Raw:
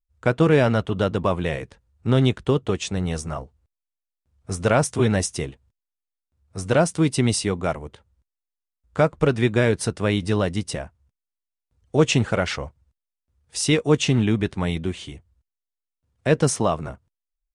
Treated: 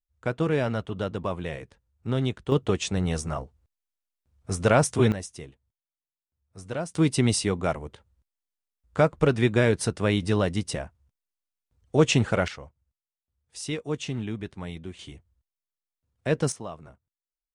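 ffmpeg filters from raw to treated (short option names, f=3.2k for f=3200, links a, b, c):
-af "asetnsamples=n=441:p=0,asendcmd='2.52 volume volume -1dB;5.12 volume volume -13dB;6.95 volume volume -2dB;12.48 volume volume -12dB;14.99 volume volume -6dB;16.52 volume volume -16dB',volume=-8dB"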